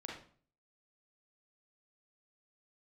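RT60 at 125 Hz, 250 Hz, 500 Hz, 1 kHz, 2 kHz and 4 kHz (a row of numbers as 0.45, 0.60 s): 0.60, 0.55, 0.50, 0.45, 0.40, 0.40 s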